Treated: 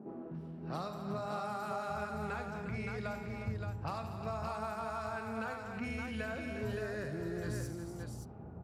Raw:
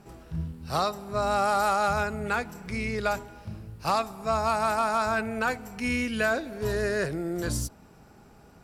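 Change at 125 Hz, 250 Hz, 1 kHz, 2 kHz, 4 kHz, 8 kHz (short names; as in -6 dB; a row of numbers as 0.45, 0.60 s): -5.0, -8.0, -13.5, -13.0, -15.0, -16.0 dB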